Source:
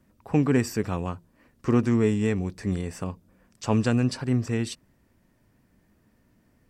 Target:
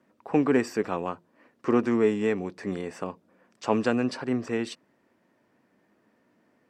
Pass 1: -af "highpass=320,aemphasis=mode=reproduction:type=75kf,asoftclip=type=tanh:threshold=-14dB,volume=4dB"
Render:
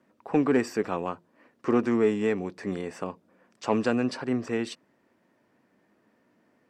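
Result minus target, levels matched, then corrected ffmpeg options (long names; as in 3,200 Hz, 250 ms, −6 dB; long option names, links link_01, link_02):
soft clipping: distortion +12 dB
-af "highpass=320,aemphasis=mode=reproduction:type=75kf,asoftclip=type=tanh:threshold=-7.5dB,volume=4dB"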